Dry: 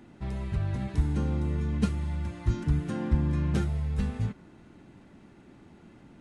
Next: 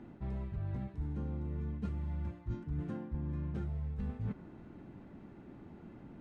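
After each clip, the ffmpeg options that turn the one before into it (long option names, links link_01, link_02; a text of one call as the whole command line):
ffmpeg -i in.wav -af "lowpass=frequency=1100:poles=1,areverse,acompressor=threshold=-36dB:ratio=10,areverse,volume=1.5dB" out.wav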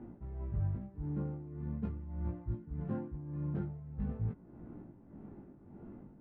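ffmpeg -i in.wav -af "adynamicsmooth=sensitivity=5.5:basefreq=1100,flanger=delay=17:depth=3.7:speed=0.43,tremolo=f=1.7:d=0.68,volume=6.5dB" out.wav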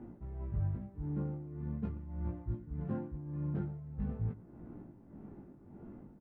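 ffmpeg -i in.wav -af "aecho=1:1:116:0.112" out.wav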